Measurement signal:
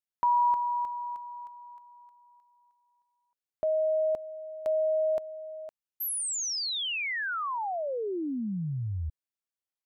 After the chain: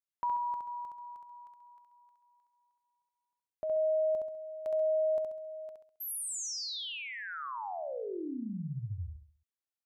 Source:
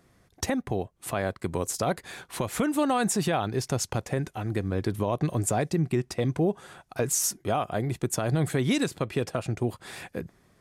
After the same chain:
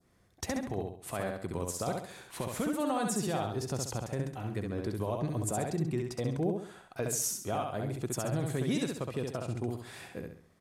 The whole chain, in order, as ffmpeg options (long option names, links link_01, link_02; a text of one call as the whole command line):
ffmpeg -i in.wav -filter_complex "[0:a]adynamicequalizer=threshold=0.00562:dfrequency=2100:dqfactor=0.93:tfrequency=2100:tqfactor=0.93:attack=5:release=100:ratio=0.375:range=2.5:mode=cutabove:tftype=bell,asplit=2[link_01][link_02];[link_02]aecho=0:1:67|134|201|268|335:0.668|0.261|0.102|0.0396|0.0155[link_03];[link_01][link_03]amix=inputs=2:normalize=0,volume=-7.5dB" out.wav